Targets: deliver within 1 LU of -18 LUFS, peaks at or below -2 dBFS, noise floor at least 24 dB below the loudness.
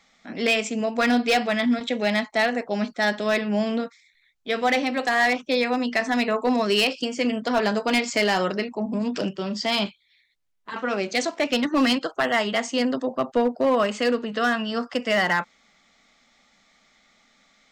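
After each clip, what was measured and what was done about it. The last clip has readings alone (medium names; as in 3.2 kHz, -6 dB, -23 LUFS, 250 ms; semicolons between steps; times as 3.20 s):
clipped samples 0.8%; clipping level -14.0 dBFS; loudness -23.5 LUFS; peak level -14.0 dBFS; loudness target -18.0 LUFS
-> clip repair -14 dBFS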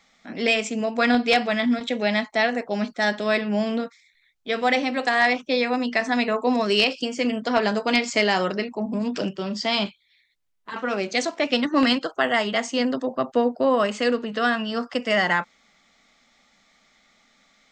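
clipped samples 0.0%; loudness -23.0 LUFS; peak level -5.5 dBFS; loudness target -18.0 LUFS
-> trim +5 dB; peak limiter -2 dBFS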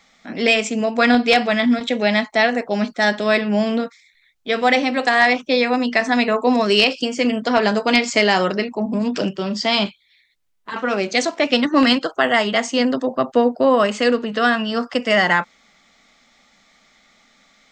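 loudness -18.0 LUFS; peak level -2.0 dBFS; noise floor -58 dBFS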